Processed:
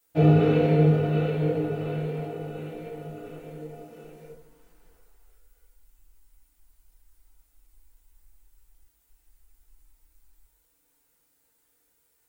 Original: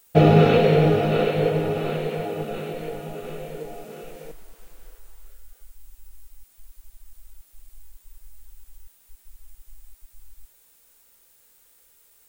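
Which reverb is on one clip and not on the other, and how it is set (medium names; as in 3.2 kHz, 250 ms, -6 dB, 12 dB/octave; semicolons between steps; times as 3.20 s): FDN reverb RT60 0.6 s, low-frequency decay 1.55×, high-frequency decay 0.45×, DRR -7.5 dB; trim -17 dB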